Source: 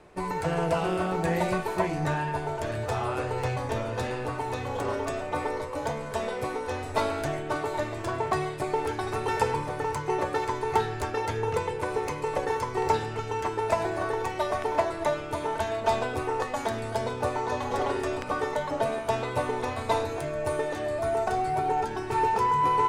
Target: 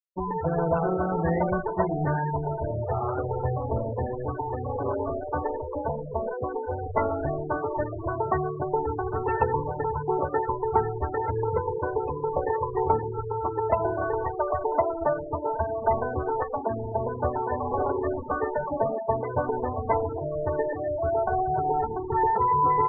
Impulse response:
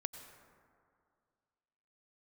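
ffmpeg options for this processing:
-filter_complex "[0:a]asplit=2[link_01][link_02];[1:a]atrim=start_sample=2205,lowpass=3100[link_03];[link_02][link_03]afir=irnorm=-1:irlink=0,volume=2dB[link_04];[link_01][link_04]amix=inputs=2:normalize=0,afftfilt=real='re*gte(hypot(re,im),0.126)':imag='im*gte(hypot(re,im),0.126)':win_size=1024:overlap=0.75,equalizer=frequency=72:width_type=o:width=0.35:gain=10.5,volume=-4dB"

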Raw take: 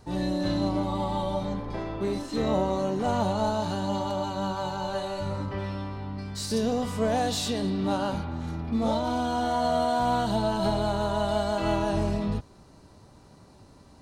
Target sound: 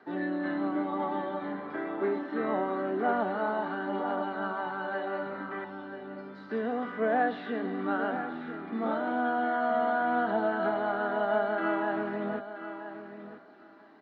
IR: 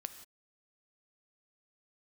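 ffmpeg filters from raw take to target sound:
-filter_complex "[0:a]asettb=1/sr,asplit=3[link_01][link_02][link_03];[link_01]atrim=end=5.644[link_04];[link_02]atrim=start=5.64:end=6.51,asetpts=PTS-STARTPTS,afade=type=in:duration=0.004:curve=qsin,afade=type=out:start_time=0.866:duration=0.004:curve=qsin,equalizer=frequency=1600:width_type=o:width=1.7:gain=-14[link_05];[link_03]atrim=start=6.506[link_06];[link_04][link_05]acrossfade=duration=0.004:curve1=hsin:curve2=qsin[link_07];[link_07][link_06]acrossfade=duration=0.004:curve1=qsin:curve2=hsin,acrossover=split=420|1900[link_08][link_09][link_10];[link_09]crystalizer=i=8:c=0[link_11];[link_10]acompressor=threshold=-55dB:ratio=6[link_12];[link_08][link_11][link_12]amix=inputs=3:normalize=0,aphaser=in_gain=1:out_gain=1:delay=1.1:decay=0.23:speed=0.97:type=triangular,highpass=frequency=270:width=0.5412,highpass=frequency=270:width=1.3066,equalizer=frequency=540:width_type=q:width=4:gain=-7,equalizer=frequency=960:width_type=q:width=4:gain=-10,equalizer=frequency=1600:width_type=q:width=4:gain=5,equalizer=frequency=2600:width_type=q:width=4:gain=-8,lowpass=frequency=3000:width=0.5412,lowpass=frequency=3000:width=1.3066,asplit=2[link_13][link_14];[link_14]aecho=0:1:981|1962:0.282|0.0423[link_15];[link_13][link_15]amix=inputs=2:normalize=0"

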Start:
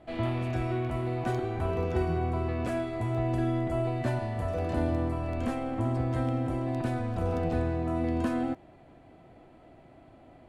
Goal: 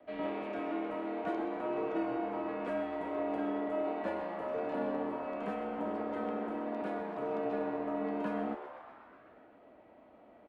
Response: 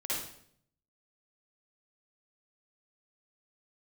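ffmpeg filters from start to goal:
-filter_complex "[0:a]afreqshift=-42,highpass=40,lowshelf=frequency=300:gain=9,acrossover=split=120|780|2600[link_01][link_02][link_03][link_04];[link_01]aeval=exprs='0.0188*(abs(mod(val(0)/0.0188+3,4)-2)-1)':channel_layout=same[link_05];[link_05][link_02][link_03][link_04]amix=inputs=4:normalize=0,acrossover=split=290 3300:gain=0.0708 1 0.141[link_06][link_07][link_08];[link_06][link_07][link_08]amix=inputs=3:normalize=0,asplit=9[link_09][link_10][link_11][link_12][link_13][link_14][link_15][link_16][link_17];[link_10]adelay=127,afreqshift=150,volume=-11.5dB[link_18];[link_11]adelay=254,afreqshift=300,volume=-15.4dB[link_19];[link_12]adelay=381,afreqshift=450,volume=-19.3dB[link_20];[link_13]adelay=508,afreqshift=600,volume=-23.1dB[link_21];[link_14]adelay=635,afreqshift=750,volume=-27dB[link_22];[link_15]adelay=762,afreqshift=900,volume=-30.9dB[link_23];[link_16]adelay=889,afreqshift=1050,volume=-34.8dB[link_24];[link_17]adelay=1016,afreqshift=1200,volume=-38.6dB[link_25];[link_09][link_18][link_19][link_20][link_21][link_22][link_23][link_24][link_25]amix=inputs=9:normalize=0,volume=-4dB"

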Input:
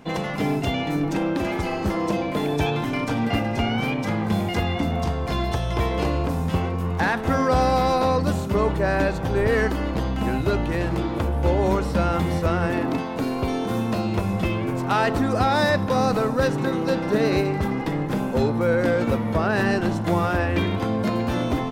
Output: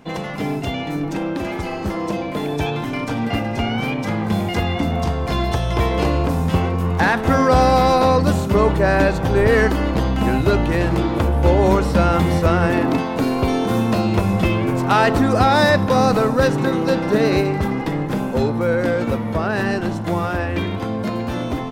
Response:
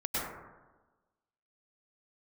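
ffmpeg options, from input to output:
-af "dynaudnorm=framelen=560:gausssize=17:maxgain=11.5dB"

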